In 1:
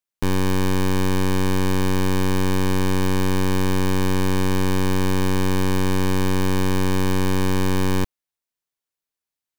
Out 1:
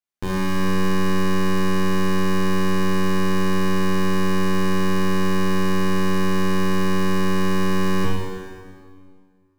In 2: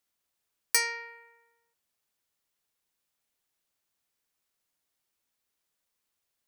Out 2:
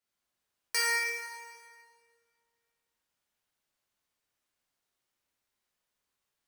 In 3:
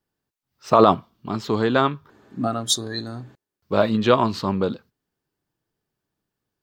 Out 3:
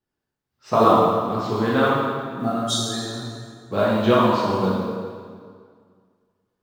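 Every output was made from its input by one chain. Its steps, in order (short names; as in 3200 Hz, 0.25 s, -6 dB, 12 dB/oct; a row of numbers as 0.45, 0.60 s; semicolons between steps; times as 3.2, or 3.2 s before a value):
high shelf 7200 Hz -7 dB; modulation noise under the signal 35 dB; plate-style reverb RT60 2 s, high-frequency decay 0.8×, DRR -6.5 dB; gain -6 dB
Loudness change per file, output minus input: -0.5, -2.0, +0.5 LU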